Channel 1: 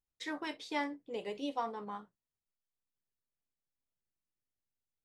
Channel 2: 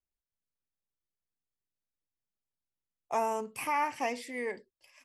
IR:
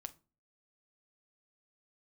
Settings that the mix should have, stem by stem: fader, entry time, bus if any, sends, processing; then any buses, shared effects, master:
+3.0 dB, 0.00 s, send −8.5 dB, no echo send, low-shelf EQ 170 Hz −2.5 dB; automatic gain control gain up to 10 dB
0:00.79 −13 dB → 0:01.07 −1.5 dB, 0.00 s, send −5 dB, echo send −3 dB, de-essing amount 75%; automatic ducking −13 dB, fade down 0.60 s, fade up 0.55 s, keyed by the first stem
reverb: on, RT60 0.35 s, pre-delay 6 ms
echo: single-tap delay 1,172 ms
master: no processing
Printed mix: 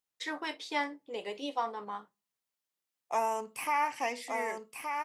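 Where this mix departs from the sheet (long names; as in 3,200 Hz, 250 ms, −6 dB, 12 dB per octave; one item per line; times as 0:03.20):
stem 1: missing automatic gain control gain up to 10 dB
master: extra high-pass filter 430 Hz 6 dB per octave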